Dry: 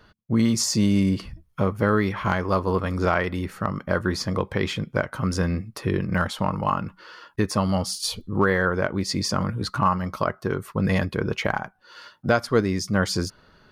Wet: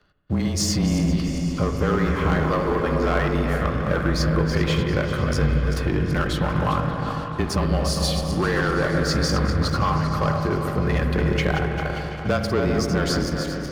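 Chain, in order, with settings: backward echo that repeats 198 ms, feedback 57%, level -8 dB; peaking EQ 9.8 kHz -4.5 dB 1.2 oct; band-stop 960 Hz, Q 7.1; waveshaping leveller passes 2; compression, threshold -14 dBFS, peak gain reduction 3.5 dB; delay with an opening low-pass 146 ms, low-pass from 400 Hz, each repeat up 1 oct, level -6 dB; frequency shift -27 Hz; spring tank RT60 2.9 s, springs 33/57 ms, chirp 60 ms, DRR 6.5 dB; trim -4.5 dB

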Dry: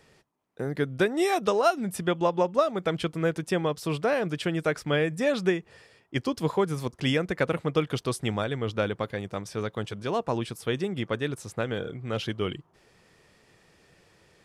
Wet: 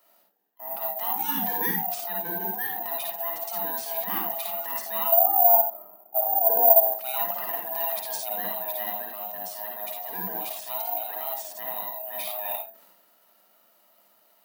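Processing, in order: split-band scrambler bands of 500 Hz; steep high-pass 180 Hz 72 dB/octave; transient shaper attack -6 dB, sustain +8 dB; 5.12–6.87 s: resonant low-pass 710 Hz, resonance Q 4.9; reverberation RT60 0.25 s, pre-delay 50 ms, DRR 0.5 dB; careless resampling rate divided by 3×, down none, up zero stuff; trim -9.5 dB

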